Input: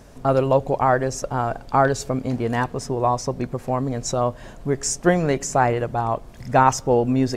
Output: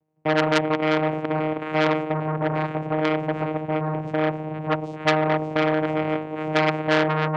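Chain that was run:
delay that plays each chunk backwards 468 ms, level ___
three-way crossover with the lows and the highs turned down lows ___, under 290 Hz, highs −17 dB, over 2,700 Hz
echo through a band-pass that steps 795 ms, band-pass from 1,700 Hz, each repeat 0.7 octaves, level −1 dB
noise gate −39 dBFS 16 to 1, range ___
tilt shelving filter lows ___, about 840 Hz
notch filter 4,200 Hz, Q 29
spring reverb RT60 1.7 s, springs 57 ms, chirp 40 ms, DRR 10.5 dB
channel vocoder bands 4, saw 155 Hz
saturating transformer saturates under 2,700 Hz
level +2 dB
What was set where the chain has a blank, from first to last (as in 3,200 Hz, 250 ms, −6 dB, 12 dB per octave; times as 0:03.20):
−10 dB, −20 dB, −28 dB, +8 dB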